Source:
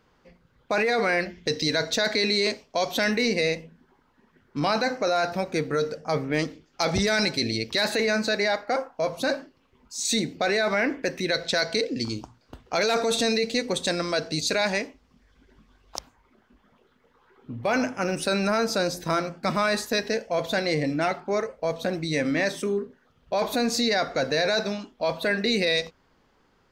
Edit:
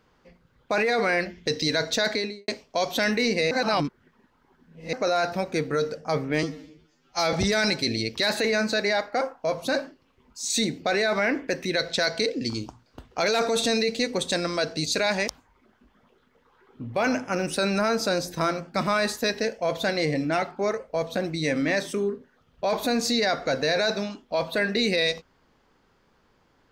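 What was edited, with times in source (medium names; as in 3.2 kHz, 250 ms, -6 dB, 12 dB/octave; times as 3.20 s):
2.07–2.48 s: studio fade out
3.51–4.93 s: reverse
6.43–6.88 s: stretch 2×
14.83–15.97 s: delete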